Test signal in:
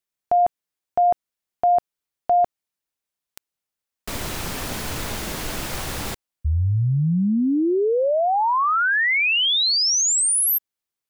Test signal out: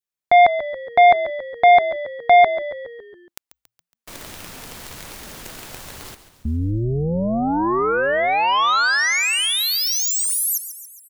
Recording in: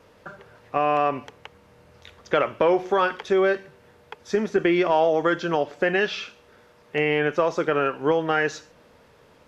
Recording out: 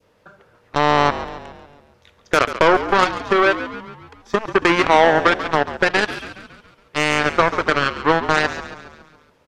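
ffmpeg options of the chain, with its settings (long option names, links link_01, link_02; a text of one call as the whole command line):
ffmpeg -i in.wav -filter_complex "[0:a]aeval=exprs='0.422*(cos(1*acos(clip(val(0)/0.422,-1,1)))-cos(1*PI/2))+0.0841*(cos(7*acos(clip(val(0)/0.422,-1,1)))-cos(7*PI/2))':channel_layout=same,adynamicequalizer=threshold=0.0158:dfrequency=1200:dqfactor=0.85:tfrequency=1200:tqfactor=0.85:attack=5:release=100:ratio=0.375:range=2.5:mode=boostabove:tftype=bell,asplit=7[link_01][link_02][link_03][link_04][link_05][link_06][link_07];[link_02]adelay=139,afreqshift=-59,volume=-12.5dB[link_08];[link_03]adelay=278,afreqshift=-118,volume=-17.7dB[link_09];[link_04]adelay=417,afreqshift=-177,volume=-22.9dB[link_10];[link_05]adelay=556,afreqshift=-236,volume=-28.1dB[link_11];[link_06]adelay=695,afreqshift=-295,volume=-33.3dB[link_12];[link_07]adelay=834,afreqshift=-354,volume=-38.5dB[link_13];[link_01][link_08][link_09][link_10][link_11][link_12][link_13]amix=inputs=7:normalize=0,volume=3.5dB" out.wav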